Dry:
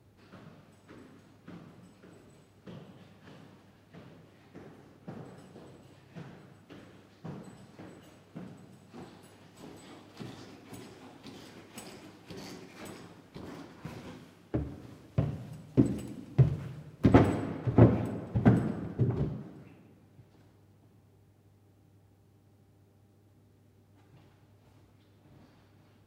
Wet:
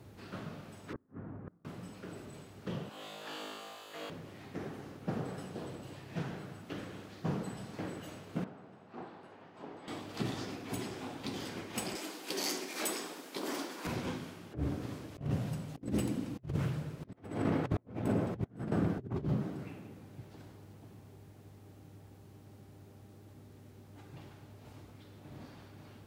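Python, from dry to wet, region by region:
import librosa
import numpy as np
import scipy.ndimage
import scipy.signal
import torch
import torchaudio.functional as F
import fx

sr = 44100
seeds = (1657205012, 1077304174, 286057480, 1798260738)

y = fx.chain(x, sr, fx.lowpass(hz=1600.0, slope=24),
    fx.low_shelf(hz=380.0, db=7.0),
    fx.gate_flip(shuts_db=-40.0, range_db=-33), at=(0.93, 1.65))
y = fx.chain(y, sr, fx.highpass(hz=610.0, slope=12),
    fx.doubler(ms=19.0, db=-6.5),
    fx.room_flutter(wall_m=3.3, rt60_s=1.4), at=(2.89, 4.1))
y = fx.chain(y, sr, fx.lowpass(hz=1000.0, slope=12),
    fx.tilt_eq(slope=4.5), at=(8.44, 9.88))
y = fx.chain(y, sr, fx.highpass(hz=260.0, slope=24),
    fx.high_shelf(hz=4500.0, db=11.5), at=(11.95, 13.87))
y = fx.low_shelf(y, sr, hz=84.0, db=-3.0)
y = fx.over_compress(y, sr, threshold_db=-37.0, ratio=-0.5)
y = F.gain(torch.from_numpy(y), 2.0).numpy()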